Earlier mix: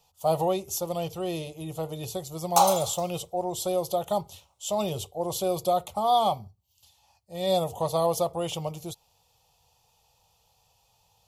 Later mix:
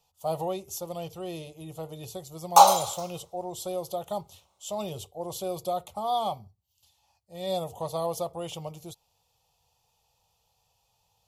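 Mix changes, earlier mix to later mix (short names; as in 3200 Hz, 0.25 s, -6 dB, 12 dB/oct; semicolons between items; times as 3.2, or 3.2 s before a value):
speech -5.5 dB; background: send +6.5 dB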